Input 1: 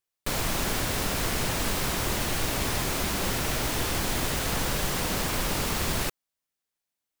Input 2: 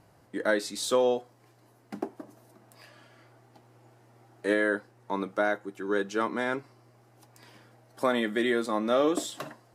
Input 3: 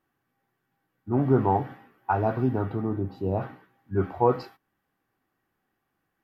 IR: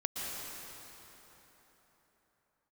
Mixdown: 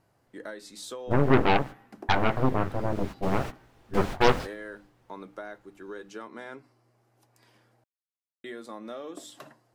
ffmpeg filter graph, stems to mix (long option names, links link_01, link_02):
-filter_complex "[0:a]lowpass=frequency=1800:poles=1,volume=-4.5dB,afade=type=in:start_time=2.84:duration=0.77:silence=0.223872,afade=type=out:start_time=4.73:duration=0.21:silence=0.421697[link_01];[1:a]bandreject=frequency=50:width_type=h:width=6,bandreject=frequency=100:width_type=h:width=6,bandreject=frequency=150:width_type=h:width=6,bandreject=frequency=200:width_type=h:width=6,bandreject=frequency=250:width_type=h:width=6,bandreject=frequency=300:width_type=h:width=6,acompressor=threshold=-28dB:ratio=6,volume=-8dB,asplit=3[link_02][link_03][link_04];[link_02]atrim=end=7.84,asetpts=PTS-STARTPTS,afade=type=out:start_time=7.836:duration=0.004:curve=hsin[link_05];[link_03]atrim=start=7.84:end=8.44,asetpts=PTS-STARTPTS,volume=0[link_06];[link_04]atrim=start=8.44,asetpts=PTS-STARTPTS,afade=type=in:duration=0.004:curve=hsin[link_07];[link_05][link_06][link_07]concat=n=3:v=0:a=1[link_08];[2:a]aeval=exprs='0.355*(cos(1*acos(clip(val(0)/0.355,-1,1)))-cos(1*PI/2))+0.0501*(cos(3*acos(clip(val(0)/0.355,-1,1)))-cos(3*PI/2))+0.0794*(cos(8*acos(clip(val(0)/0.355,-1,1)))-cos(8*PI/2))':channel_layout=same,volume=0.5dB,asplit=2[link_09][link_10];[link_10]apad=whole_len=317532[link_11];[link_01][link_11]sidechaingate=range=-26dB:threshold=-33dB:ratio=16:detection=peak[link_12];[link_12][link_08][link_09]amix=inputs=3:normalize=0"